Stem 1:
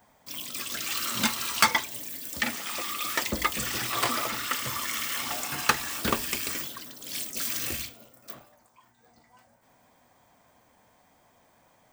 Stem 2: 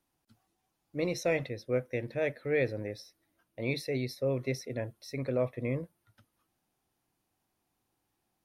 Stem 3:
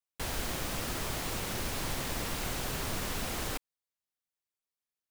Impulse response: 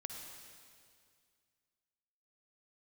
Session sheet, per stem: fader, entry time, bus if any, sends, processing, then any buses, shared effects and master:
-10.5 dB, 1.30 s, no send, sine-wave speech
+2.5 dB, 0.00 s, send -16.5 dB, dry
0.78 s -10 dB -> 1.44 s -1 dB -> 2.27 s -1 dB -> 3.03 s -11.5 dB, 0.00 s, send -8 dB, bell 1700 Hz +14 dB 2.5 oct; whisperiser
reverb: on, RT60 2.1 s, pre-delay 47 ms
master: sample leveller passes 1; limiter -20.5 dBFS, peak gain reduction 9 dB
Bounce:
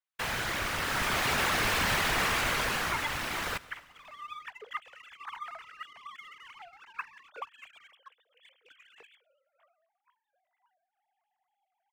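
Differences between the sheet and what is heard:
stem 1 -10.5 dB -> -18.5 dB; stem 2: muted

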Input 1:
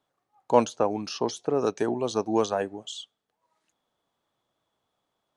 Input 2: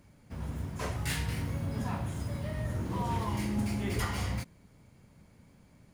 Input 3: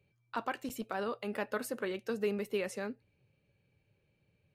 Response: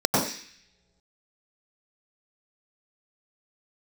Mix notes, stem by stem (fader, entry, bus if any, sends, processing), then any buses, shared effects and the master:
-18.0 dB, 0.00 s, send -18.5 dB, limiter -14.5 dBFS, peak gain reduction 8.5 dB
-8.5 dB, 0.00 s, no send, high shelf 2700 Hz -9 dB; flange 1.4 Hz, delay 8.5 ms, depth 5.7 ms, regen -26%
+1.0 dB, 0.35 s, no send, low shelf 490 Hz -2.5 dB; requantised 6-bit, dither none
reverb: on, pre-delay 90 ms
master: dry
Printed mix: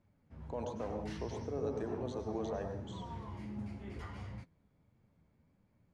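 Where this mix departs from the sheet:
stem 3: muted; master: extra air absorption 63 m

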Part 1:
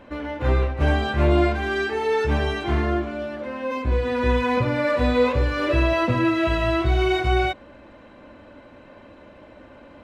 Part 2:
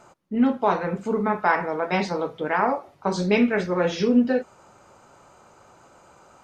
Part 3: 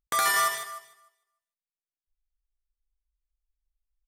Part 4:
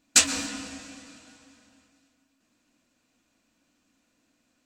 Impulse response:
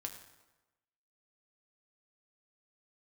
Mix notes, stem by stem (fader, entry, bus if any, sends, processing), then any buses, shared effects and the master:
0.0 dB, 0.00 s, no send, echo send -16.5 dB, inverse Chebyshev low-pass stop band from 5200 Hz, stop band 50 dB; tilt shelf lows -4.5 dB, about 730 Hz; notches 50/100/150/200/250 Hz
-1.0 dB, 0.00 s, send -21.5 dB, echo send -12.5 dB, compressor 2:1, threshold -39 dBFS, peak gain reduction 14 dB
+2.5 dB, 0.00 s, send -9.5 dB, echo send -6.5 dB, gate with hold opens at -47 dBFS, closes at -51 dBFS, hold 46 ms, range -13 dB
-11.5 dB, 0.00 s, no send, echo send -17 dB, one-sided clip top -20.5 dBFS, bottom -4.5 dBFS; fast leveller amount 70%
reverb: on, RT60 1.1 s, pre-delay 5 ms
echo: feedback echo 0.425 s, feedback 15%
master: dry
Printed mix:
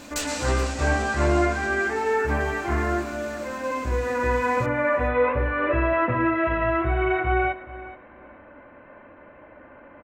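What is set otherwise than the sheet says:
stem 2: muted; stem 3: muted; reverb: off

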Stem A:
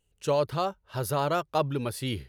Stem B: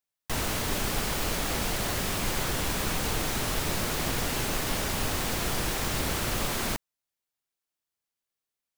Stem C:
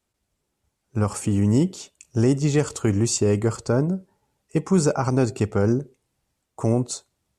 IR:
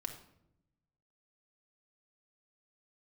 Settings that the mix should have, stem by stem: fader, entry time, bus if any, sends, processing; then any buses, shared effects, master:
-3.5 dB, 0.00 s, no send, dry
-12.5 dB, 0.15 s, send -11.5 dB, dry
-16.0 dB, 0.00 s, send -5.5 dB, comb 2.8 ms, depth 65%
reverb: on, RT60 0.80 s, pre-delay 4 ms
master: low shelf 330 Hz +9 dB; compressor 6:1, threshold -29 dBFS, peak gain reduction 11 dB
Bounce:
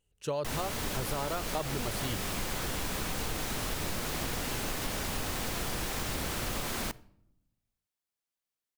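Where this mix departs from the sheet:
stem B -12.5 dB -> -5.0 dB; stem C: muted; master: missing low shelf 330 Hz +9 dB

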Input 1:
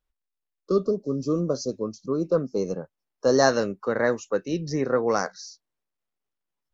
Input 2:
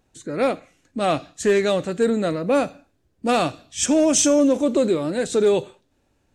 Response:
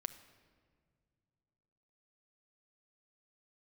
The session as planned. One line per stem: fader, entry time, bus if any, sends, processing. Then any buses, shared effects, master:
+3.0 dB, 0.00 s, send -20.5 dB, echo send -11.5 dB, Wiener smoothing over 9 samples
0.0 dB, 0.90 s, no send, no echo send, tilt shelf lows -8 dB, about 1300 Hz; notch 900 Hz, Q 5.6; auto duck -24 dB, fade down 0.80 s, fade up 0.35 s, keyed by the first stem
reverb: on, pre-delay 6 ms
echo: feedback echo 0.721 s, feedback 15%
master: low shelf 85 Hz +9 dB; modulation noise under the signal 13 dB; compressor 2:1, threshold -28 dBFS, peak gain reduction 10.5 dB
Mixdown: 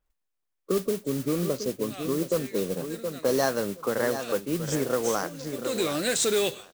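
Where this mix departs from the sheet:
stem 2 0.0 dB -> +7.0 dB; master: missing low shelf 85 Hz +9 dB

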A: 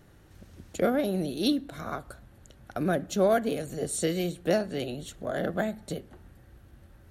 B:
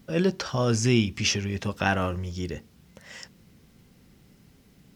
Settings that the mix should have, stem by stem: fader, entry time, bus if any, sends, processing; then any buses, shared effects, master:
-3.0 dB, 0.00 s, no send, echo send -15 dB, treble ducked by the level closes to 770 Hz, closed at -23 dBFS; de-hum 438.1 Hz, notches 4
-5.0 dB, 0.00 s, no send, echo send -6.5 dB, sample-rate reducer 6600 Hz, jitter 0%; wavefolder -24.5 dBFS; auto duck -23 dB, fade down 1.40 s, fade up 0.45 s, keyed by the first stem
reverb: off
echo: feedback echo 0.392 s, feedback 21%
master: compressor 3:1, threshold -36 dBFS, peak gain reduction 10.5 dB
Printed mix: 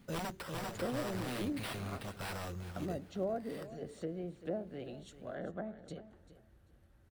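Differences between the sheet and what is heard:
stem A -3.0 dB -> -12.0 dB; master: missing compressor 3:1, threshold -36 dBFS, peak gain reduction 10.5 dB

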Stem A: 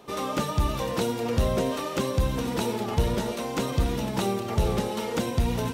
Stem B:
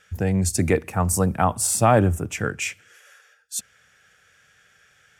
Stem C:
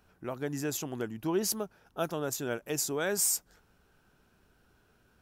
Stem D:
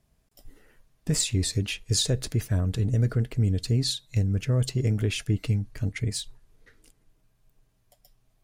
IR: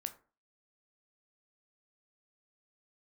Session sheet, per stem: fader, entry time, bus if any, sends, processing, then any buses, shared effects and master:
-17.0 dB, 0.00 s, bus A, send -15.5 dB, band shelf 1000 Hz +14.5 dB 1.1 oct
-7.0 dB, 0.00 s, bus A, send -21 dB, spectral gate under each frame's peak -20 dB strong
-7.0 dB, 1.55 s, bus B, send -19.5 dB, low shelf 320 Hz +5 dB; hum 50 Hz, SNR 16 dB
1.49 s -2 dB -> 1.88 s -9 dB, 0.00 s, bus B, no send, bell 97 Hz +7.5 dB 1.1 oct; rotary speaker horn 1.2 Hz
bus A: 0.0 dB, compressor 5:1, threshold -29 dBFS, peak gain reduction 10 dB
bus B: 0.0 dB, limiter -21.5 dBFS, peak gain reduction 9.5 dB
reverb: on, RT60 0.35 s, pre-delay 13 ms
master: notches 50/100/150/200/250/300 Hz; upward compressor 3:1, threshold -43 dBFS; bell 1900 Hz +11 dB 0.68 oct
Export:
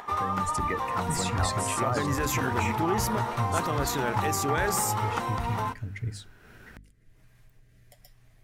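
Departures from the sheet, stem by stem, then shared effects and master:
stem A -17.0 dB -> -7.0 dB; stem C -7.0 dB -> +4.5 dB

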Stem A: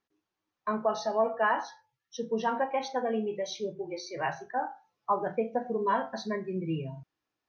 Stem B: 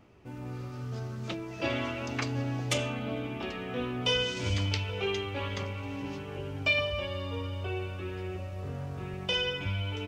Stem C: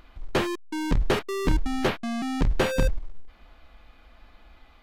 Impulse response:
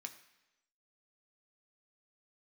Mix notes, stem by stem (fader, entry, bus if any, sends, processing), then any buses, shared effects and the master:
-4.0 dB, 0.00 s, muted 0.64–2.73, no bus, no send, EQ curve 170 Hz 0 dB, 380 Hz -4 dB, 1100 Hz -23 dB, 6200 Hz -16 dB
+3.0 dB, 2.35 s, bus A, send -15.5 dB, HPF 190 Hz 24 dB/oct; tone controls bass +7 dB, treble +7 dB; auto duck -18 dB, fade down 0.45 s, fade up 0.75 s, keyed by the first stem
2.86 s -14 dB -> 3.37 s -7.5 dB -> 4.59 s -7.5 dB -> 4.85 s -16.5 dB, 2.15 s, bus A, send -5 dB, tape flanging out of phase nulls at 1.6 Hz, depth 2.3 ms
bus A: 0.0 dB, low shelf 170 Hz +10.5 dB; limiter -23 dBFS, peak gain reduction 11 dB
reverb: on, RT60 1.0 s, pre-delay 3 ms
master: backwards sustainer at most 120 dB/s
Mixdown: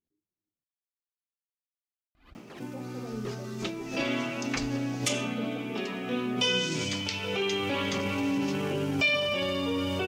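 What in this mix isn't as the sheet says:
stem B +3.0 dB -> +14.0 dB; stem C -14.0 dB -> -24.0 dB

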